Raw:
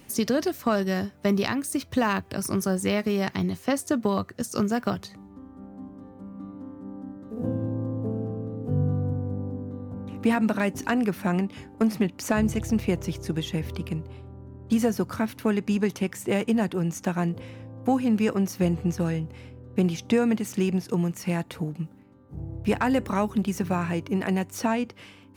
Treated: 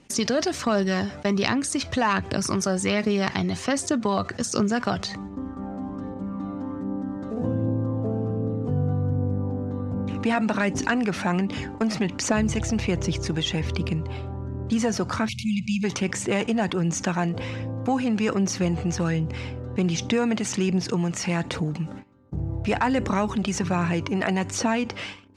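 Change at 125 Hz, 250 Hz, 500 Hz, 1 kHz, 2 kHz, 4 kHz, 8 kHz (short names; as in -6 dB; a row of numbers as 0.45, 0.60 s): +2.5, +0.5, +1.0, +3.0, +4.0, +7.0, +6.5 dB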